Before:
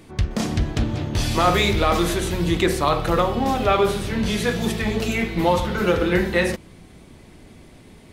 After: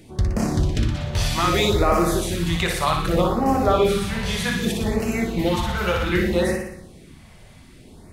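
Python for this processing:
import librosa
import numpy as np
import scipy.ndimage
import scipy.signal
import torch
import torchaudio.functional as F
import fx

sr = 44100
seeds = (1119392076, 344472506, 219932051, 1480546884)

y = fx.room_flutter(x, sr, wall_m=10.2, rt60_s=0.76)
y = fx.filter_lfo_notch(y, sr, shape='sine', hz=0.64, low_hz=280.0, high_hz=3600.0, q=0.78)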